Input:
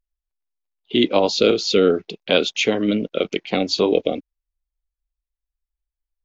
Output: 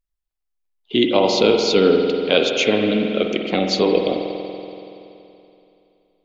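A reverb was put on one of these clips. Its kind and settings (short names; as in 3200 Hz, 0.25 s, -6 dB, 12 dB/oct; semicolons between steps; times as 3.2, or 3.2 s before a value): spring tank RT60 2.9 s, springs 47 ms, chirp 35 ms, DRR 2.5 dB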